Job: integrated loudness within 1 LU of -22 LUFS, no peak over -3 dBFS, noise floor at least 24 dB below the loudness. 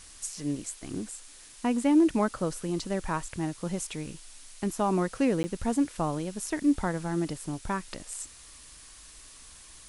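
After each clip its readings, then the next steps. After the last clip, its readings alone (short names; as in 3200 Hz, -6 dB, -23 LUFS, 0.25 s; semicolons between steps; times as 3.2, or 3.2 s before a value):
dropouts 1; longest dropout 10 ms; noise floor -50 dBFS; noise floor target -54 dBFS; loudness -30.0 LUFS; peak -13.0 dBFS; loudness target -22.0 LUFS
-> interpolate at 5.43, 10 ms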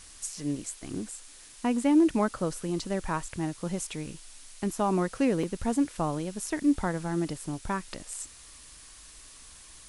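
dropouts 0; noise floor -50 dBFS; noise floor target -54 dBFS
-> denoiser 6 dB, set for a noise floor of -50 dBFS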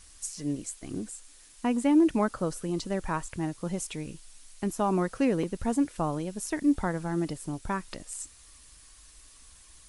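noise floor -54 dBFS; loudness -30.0 LUFS; peak -13.0 dBFS; loudness target -22.0 LUFS
-> gain +8 dB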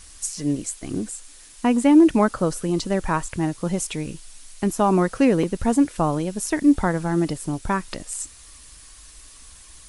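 loudness -22.0 LUFS; peak -5.0 dBFS; noise floor -46 dBFS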